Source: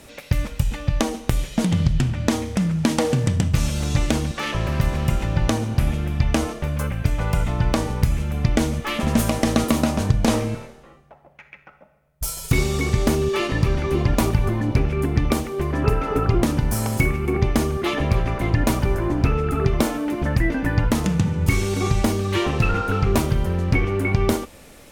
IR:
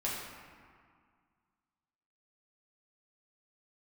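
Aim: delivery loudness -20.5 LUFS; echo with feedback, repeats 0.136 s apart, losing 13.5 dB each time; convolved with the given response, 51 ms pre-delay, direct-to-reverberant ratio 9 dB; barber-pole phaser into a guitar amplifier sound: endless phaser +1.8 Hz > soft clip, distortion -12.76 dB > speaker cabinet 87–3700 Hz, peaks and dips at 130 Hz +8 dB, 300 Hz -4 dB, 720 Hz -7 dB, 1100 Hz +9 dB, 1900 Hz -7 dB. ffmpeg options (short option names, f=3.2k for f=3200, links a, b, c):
-filter_complex "[0:a]aecho=1:1:136|272:0.211|0.0444,asplit=2[a][b];[1:a]atrim=start_sample=2205,adelay=51[c];[b][c]afir=irnorm=-1:irlink=0,volume=-14dB[d];[a][d]amix=inputs=2:normalize=0,asplit=2[e][f];[f]afreqshift=1.8[g];[e][g]amix=inputs=2:normalize=1,asoftclip=threshold=-18dB,highpass=87,equalizer=f=130:t=q:w=4:g=8,equalizer=f=300:t=q:w=4:g=-4,equalizer=f=720:t=q:w=4:g=-7,equalizer=f=1.1k:t=q:w=4:g=9,equalizer=f=1.9k:t=q:w=4:g=-7,lowpass=f=3.7k:w=0.5412,lowpass=f=3.7k:w=1.3066,volume=6dB"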